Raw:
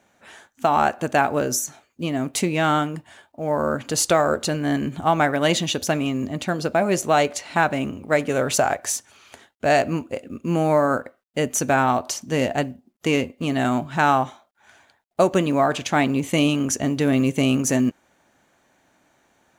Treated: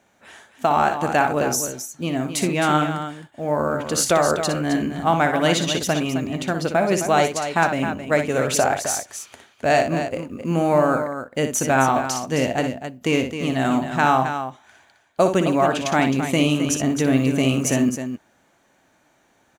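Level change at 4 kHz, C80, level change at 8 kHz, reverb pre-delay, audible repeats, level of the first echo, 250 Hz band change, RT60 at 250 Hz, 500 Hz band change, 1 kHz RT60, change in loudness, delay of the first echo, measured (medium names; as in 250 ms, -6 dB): +1.0 dB, no reverb, +1.0 dB, no reverb, 2, -8.0 dB, +1.0 dB, no reverb, +1.0 dB, no reverb, +1.0 dB, 60 ms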